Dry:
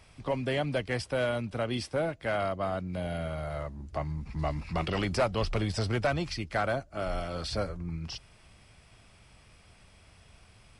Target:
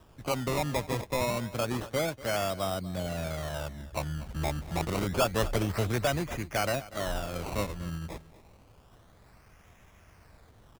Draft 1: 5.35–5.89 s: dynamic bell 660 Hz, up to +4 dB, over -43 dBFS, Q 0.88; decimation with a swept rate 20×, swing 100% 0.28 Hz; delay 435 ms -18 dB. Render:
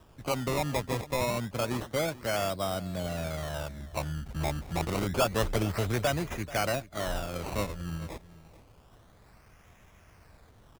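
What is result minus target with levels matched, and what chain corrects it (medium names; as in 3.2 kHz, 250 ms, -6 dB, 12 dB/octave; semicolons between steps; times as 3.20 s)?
echo 194 ms late
5.35–5.89 s: dynamic bell 660 Hz, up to +4 dB, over -43 dBFS, Q 0.88; decimation with a swept rate 20×, swing 100% 0.28 Hz; delay 241 ms -18 dB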